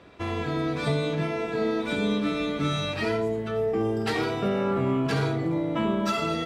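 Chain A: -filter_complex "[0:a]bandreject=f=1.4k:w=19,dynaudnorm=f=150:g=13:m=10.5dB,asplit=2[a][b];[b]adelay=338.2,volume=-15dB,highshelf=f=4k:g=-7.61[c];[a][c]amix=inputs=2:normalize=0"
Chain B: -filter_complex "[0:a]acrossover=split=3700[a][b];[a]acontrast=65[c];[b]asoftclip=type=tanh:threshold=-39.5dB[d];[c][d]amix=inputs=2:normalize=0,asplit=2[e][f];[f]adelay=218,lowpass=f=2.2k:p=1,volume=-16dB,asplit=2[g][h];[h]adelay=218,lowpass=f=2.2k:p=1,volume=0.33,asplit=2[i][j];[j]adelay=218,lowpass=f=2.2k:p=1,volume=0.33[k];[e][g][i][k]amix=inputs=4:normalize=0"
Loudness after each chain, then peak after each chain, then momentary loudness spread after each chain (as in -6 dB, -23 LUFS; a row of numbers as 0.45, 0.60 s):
-17.5, -20.5 LUFS; -5.0, -9.5 dBFS; 9, 3 LU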